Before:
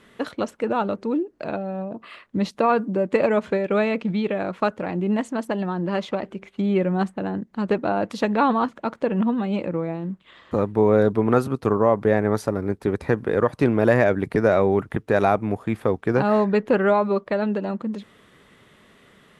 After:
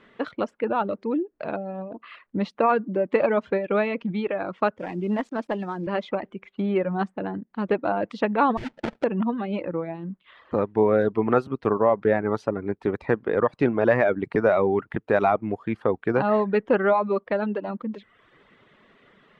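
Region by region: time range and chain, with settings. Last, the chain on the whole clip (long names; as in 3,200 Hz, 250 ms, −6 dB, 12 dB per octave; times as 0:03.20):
0:04.79–0:05.87: variable-slope delta modulation 64 kbit/s + centre clipping without the shift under −42.5 dBFS + multiband upward and downward expander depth 40%
0:08.57–0:09.04: compressor whose output falls as the input rises −26 dBFS + sample-rate reduction 1,100 Hz, jitter 20%
whole clip: reverb reduction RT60 0.66 s; low-pass filter 3,000 Hz 12 dB per octave; parametric band 68 Hz −7 dB 2.7 octaves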